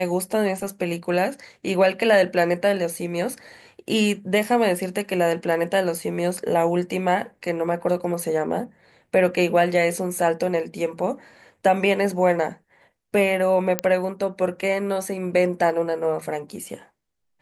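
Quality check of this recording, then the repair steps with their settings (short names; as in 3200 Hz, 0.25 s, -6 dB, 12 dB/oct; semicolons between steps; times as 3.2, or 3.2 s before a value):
13.79 pop -5 dBFS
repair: de-click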